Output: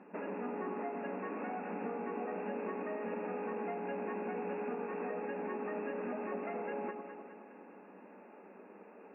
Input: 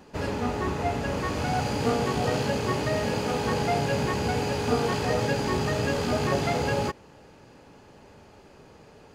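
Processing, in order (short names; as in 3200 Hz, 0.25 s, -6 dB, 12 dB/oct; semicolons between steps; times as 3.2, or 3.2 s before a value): FFT band-pass 180–2800 Hz; compressor 12:1, threshold -34 dBFS, peak gain reduction 15.5 dB; air absorption 260 m; echo with dull and thin repeats by turns 0.103 s, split 1100 Hz, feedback 75%, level -5.5 dB; gain -3 dB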